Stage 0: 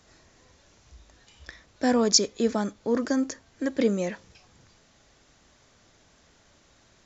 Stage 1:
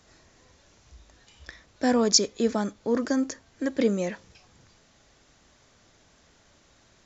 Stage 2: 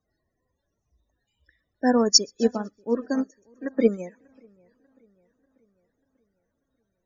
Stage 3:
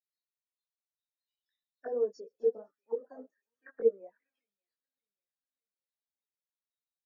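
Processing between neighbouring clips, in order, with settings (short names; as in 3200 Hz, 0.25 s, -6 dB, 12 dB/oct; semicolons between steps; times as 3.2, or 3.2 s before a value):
nothing audible
loudest bins only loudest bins 32; split-band echo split 2400 Hz, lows 0.591 s, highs 0.127 s, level -14 dB; upward expander 2.5:1, over -34 dBFS; gain +7 dB
auto-wah 460–4100 Hz, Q 7.5, down, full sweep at -20 dBFS; detuned doubles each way 17 cents; gain -2 dB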